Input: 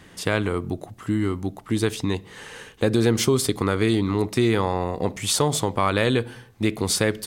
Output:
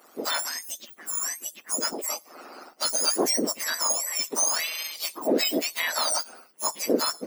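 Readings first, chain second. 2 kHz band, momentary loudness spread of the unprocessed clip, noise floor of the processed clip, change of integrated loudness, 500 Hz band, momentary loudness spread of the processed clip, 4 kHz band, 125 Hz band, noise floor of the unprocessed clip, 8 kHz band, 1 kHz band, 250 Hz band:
-3.0 dB, 11 LU, -55 dBFS, -2.5 dB, -7.5 dB, 12 LU, +1.5 dB, -28.5 dB, -50 dBFS, +4.5 dB, -4.5 dB, -10.0 dB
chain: spectrum mirrored in octaves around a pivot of 1500 Hz; AM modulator 160 Hz, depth 25%; Bessel high-pass 430 Hz, order 4; harmonic-percussive split percussive +8 dB; gain -4.5 dB

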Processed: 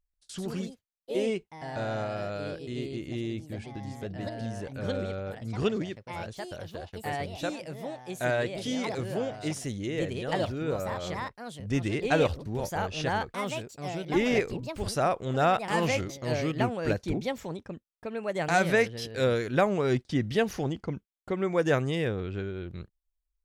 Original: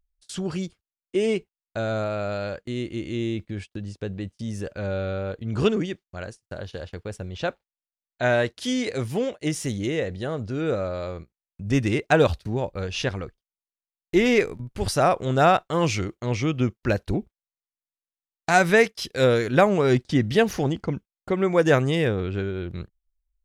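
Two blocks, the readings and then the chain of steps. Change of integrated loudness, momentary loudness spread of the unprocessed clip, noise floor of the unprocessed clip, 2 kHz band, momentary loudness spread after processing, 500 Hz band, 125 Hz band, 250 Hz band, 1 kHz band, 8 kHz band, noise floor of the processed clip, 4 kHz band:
-6.0 dB, 16 LU, under -85 dBFS, -5.5 dB, 13 LU, -5.5 dB, -6.0 dB, -5.5 dB, -4.5 dB, -5.0 dB, -81 dBFS, -5.0 dB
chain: echoes that change speed 0.137 s, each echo +3 st, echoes 2, each echo -6 dB; gain -6.5 dB

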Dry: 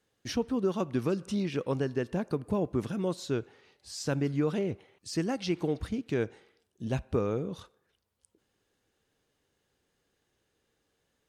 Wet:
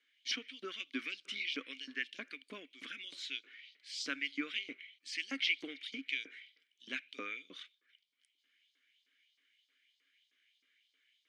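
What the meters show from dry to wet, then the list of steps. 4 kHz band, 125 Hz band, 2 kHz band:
+5.0 dB, under -35 dB, +5.5 dB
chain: LFO high-pass saw up 3.2 Hz 890–5000 Hz; vowel filter i; gain +16.5 dB

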